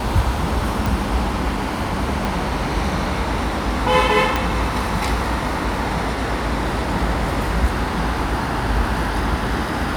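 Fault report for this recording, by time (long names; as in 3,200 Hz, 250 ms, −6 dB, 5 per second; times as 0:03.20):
0:00.86: click
0:02.25: click
0:04.36: click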